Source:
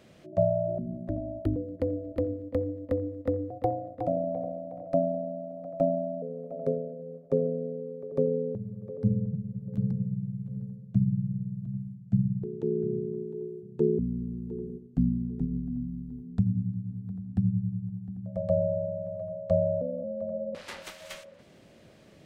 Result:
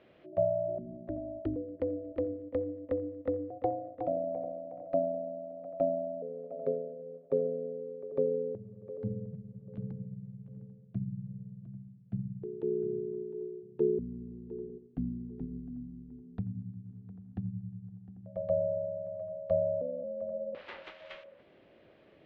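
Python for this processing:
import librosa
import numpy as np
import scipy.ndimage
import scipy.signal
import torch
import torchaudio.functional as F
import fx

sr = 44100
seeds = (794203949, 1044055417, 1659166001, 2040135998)

y = scipy.signal.sosfilt(scipy.signal.butter(4, 3300.0, 'lowpass', fs=sr, output='sos'), x)
y = fx.low_shelf_res(y, sr, hz=260.0, db=-6.0, q=1.5)
y = y * 10.0 ** (-4.0 / 20.0)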